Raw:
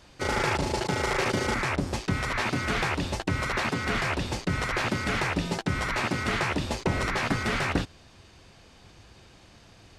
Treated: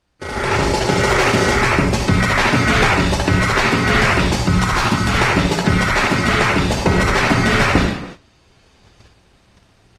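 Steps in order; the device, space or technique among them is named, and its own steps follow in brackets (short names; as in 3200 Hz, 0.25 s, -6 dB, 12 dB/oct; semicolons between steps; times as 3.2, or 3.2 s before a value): reverb removal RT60 0.52 s; 4.37–5.14 graphic EQ 500/1000/2000 Hz -9/+4/-7 dB; darkening echo 60 ms, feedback 18%, low-pass 2800 Hz, level -15.5 dB; speakerphone in a meeting room (reverb RT60 0.70 s, pre-delay 51 ms, DRR 1 dB; speakerphone echo 0.28 s, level -19 dB; AGC gain up to 14.5 dB; gate -33 dBFS, range -14 dB; Opus 32 kbps 48000 Hz)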